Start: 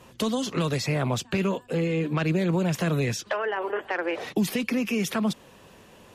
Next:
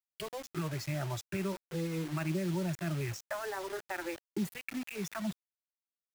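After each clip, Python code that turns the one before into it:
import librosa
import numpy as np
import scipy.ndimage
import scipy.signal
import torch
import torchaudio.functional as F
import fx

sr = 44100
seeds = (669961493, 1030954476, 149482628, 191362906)

y = fx.wiener(x, sr, points=15)
y = fx.noise_reduce_blind(y, sr, reduce_db=27)
y = fx.quant_dither(y, sr, seeds[0], bits=6, dither='none')
y = F.gain(torch.from_numpy(y), -8.5).numpy()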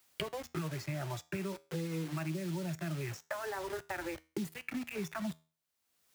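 y = scipy.signal.sosfilt(scipy.signal.butter(2, 60.0, 'highpass', fs=sr, output='sos'), x)
y = fx.comb_fb(y, sr, f0_hz=80.0, decay_s=0.31, harmonics='all', damping=0.0, mix_pct=40)
y = fx.band_squash(y, sr, depth_pct=100)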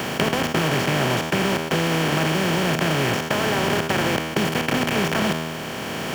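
y = fx.bin_compress(x, sr, power=0.2)
y = F.gain(torch.from_numpy(y), 9.0).numpy()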